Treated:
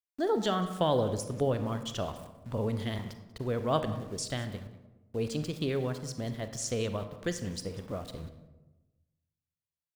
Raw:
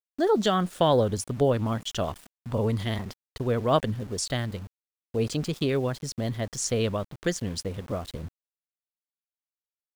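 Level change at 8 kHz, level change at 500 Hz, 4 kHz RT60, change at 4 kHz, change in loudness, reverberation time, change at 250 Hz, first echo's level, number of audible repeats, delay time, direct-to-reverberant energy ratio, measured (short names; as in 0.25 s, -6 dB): -5.5 dB, -5.5 dB, 0.55 s, -5.5 dB, -5.5 dB, 1.1 s, -5.0 dB, -20.0 dB, 1, 0.189 s, 8.5 dB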